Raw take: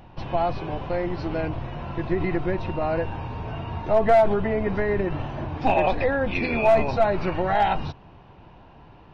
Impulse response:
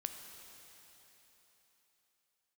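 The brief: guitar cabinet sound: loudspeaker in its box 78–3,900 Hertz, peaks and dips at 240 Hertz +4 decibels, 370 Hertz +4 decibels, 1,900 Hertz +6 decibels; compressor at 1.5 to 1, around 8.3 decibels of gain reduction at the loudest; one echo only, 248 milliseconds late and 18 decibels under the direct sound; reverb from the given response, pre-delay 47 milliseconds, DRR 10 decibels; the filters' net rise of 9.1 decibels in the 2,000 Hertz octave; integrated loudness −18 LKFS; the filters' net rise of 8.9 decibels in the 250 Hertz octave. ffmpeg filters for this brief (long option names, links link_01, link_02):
-filter_complex "[0:a]equalizer=frequency=250:width_type=o:gain=8.5,equalizer=frequency=2000:width_type=o:gain=7,acompressor=threshold=-36dB:ratio=1.5,aecho=1:1:248:0.126,asplit=2[link_01][link_02];[1:a]atrim=start_sample=2205,adelay=47[link_03];[link_02][link_03]afir=irnorm=-1:irlink=0,volume=-9dB[link_04];[link_01][link_04]amix=inputs=2:normalize=0,highpass=78,equalizer=frequency=240:width_type=q:width=4:gain=4,equalizer=frequency=370:width_type=q:width=4:gain=4,equalizer=frequency=1900:width_type=q:width=4:gain=6,lowpass=frequency=3900:width=0.5412,lowpass=frequency=3900:width=1.3066,volume=8.5dB"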